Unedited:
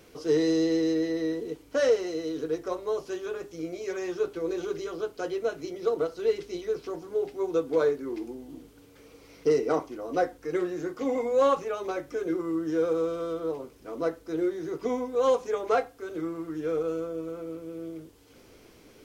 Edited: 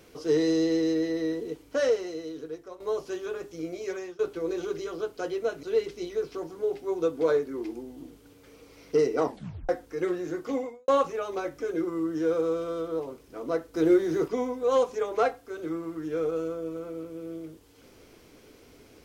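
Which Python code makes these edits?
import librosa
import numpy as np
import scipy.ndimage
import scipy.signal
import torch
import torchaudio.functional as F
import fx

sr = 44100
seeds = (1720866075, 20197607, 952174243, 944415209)

y = fx.edit(x, sr, fx.fade_out_to(start_s=1.64, length_s=1.16, floor_db=-14.0),
    fx.fade_out_to(start_s=3.9, length_s=0.29, floor_db=-20.5),
    fx.cut(start_s=5.63, length_s=0.52),
    fx.tape_stop(start_s=9.76, length_s=0.45),
    fx.fade_out_span(start_s=11.06, length_s=0.34, curve='qua'),
    fx.clip_gain(start_s=14.26, length_s=0.54, db=7.0), tone=tone)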